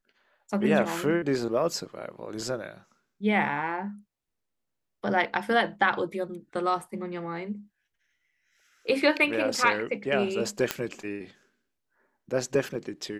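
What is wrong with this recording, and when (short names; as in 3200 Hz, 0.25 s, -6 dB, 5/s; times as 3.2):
10.71 pop -8 dBFS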